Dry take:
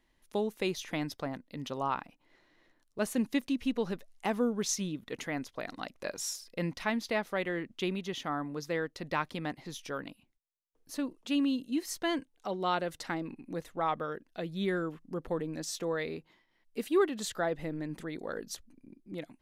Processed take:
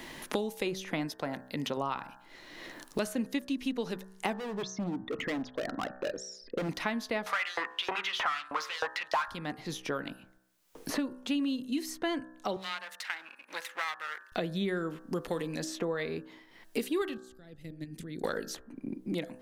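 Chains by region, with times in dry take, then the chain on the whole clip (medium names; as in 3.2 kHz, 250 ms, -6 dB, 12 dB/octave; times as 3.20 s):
1.07–1.77 s: tilt EQ +1.5 dB/octave + band-stop 1.2 kHz, Q 9.4
4.33–6.69 s: resonances exaggerated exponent 2 + low-pass 2.7 kHz + hard clipper -37 dBFS
7.26–9.28 s: overdrive pedal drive 30 dB, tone 1.2 kHz, clips at -17 dBFS + LFO high-pass saw up 3.2 Hz 760–5500 Hz
12.56–14.32 s: partial rectifier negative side -12 dB + Chebyshev high-pass 2.3 kHz
17.17–18.24 s: level held to a coarse grid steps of 12 dB + amplifier tone stack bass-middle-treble 10-0-1
whole clip: de-hum 63.43 Hz, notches 29; three bands compressed up and down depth 100%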